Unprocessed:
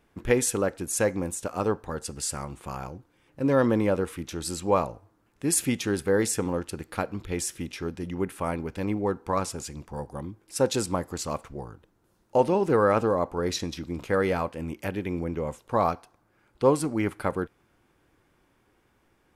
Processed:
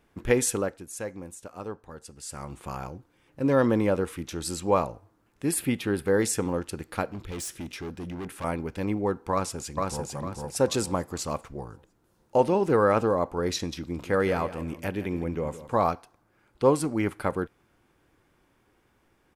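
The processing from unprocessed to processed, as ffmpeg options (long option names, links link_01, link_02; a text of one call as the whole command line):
ffmpeg -i in.wav -filter_complex "[0:a]asettb=1/sr,asplit=3[link_01][link_02][link_03];[link_01]atrim=end=5.514[link_04];[link_02]atrim=start=5.51:end=6.06,asetpts=PTS-STARTPTS,afade=type=in:duration=0.004:curve=qsin,afade=type=out:start_time=0.546:duration=0.004:curve=qsin,equalizer=frequency=6300:width_type=o:width=0.75:gain=-14[link_05];[link_03]atrim=start=6.056[link_06];[link_04][link_05]acrossfade=duration=0.004:curve1=hsin:curve2=qsin[link_07];[link_07][link_06]acrossfade=duration=0.004:curve1=qsin:curve2=hsin,asettb=1/sr,asplit=3[link_08][link_09][link_10];[link_08]atrim=end=7.124[link_11];[link_09]atrim=start=7.12:end=8.44,asetpts=PTS-STARTPTS,afade=type=in:duration=0.004:curve=qsin,afade=type=out:start_time=1.316:duration=0.004:curve=qsin,asoftclip=type=hard:threshold=-32.5dB[link_12];[link_10]atrim=start=8.436[link_13];[link_11][link_12]acrossfade=duration=0.004:curve1=hsin:curve2=qsin[link_14];[link_14][link_13]acrossfade=duration=0.004:curve1=qsin:curve2=hsin,asplit=2[link_15][link_16];[link_16]afade=type=in:start_time=9.32:duration=0.01,afade=type=out:start_time=10.12:duration=0.01,aecho=0:1:450|900|1350|1800|2250:0.794328|0.278015|0.0973052|0.0340568|0.0119199[link_17];[link_15][link_17]amix=inputs=2:normalize=0,asettb=1/sr,asplit=3[link_18][link_19][link_20];[link_18]atrim=end=13.884[link_21];[link_19]atrim=start=13.88:end=15.88,asetpts=PTS-STARTPTS,afade=type=in:duration=0.004:curve=qsin,afade=type=out:start_time=1.996:duration=0.004:curve=qsin,aecho=1:1:165|330|495:0.2|0.0579|0.0168,atrim=end_sample=88200[link_22];[link_20]atrim=start=15.876[link_23];[link_21][link_22]acrossfade=duration=0.004:curve1=hsin:curve2=qsin[link_24];[link_24][link_23]acrossfade=duration=0.004:curve1=qsin:curve2=hsin,asplit=3[link_25][link_26][link_27];[link_25]atrim=end=0.84,asetpts=PTS-STARTPTS,afade=type=out:start_time=0.52:duration=0.32:silence=0.298538[link_28];[link_26]atrim=start=0.84:end=2.24,asetpts=PTS-STARTPTS,volume=-10.5dB[link_29];[link_27]atrim=start=2.24,asetpts=PTS-STARTPTS,afade=type=in:duration=0.32:silence=0.298538[link_30];[link_28][link_29][link_30]concat=n=3:v=0:a=1" out.wav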